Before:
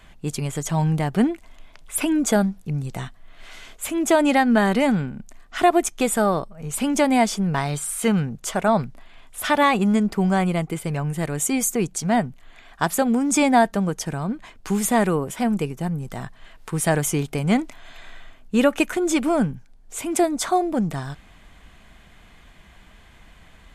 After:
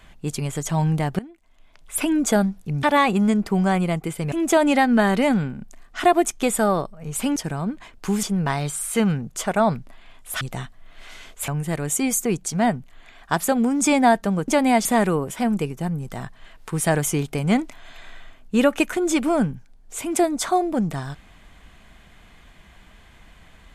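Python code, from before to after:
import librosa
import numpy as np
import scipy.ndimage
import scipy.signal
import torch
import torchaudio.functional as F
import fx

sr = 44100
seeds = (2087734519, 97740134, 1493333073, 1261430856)

y = fx.edit(x, sr, fx.fade_in_from(start_s=1.19, length_s=0.8, curve='qua', floor_db=-21.5),
    fx.swap(start_s=2.83, length_s=1.07, other_s=9.49, other_length_s=1.49),
    fx.swap(start_s=6.94, length_s=0.37, other_s=13.98, other_length_s=0.87), tone=tone)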